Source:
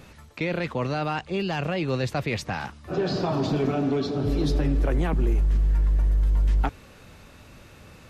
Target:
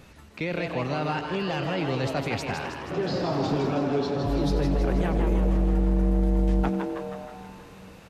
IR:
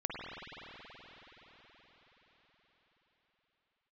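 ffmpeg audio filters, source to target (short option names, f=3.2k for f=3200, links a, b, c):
-filter_complex "[0:a]asplit=8[a][b][c][d][e][f][g][h];[b]adelay=160,afreqshift=140,volume=-6dB[i];[c]adelay=320,afreqshift=280,volume=-11.2dB[j];[d]adelay=480,afreqshift=420,volume=-16.4dB[k];[e]adelay=640,afreqshift=560,volume=-21.6dB[l];[f]adelay=800,afreqshift=700,volume=-26.8dB[m];[g]adelay=960,afreqshift=840,volume=-32dB[n];[h]adelay=1120,afreqshift=980,volume=-37.2dB[o];[a][i][j][k][l][m][n][o]amix=inputs=8:normalize=0,asplit=2[p][q];[1:a]atrim=start_sample=2205,adelay=92[r];[q][r]afir=irnorm=-1:irlink=0,volume=-15.5dB[s];[p][s]amix=inputs=2:normalize=0,volume=-2.5dB"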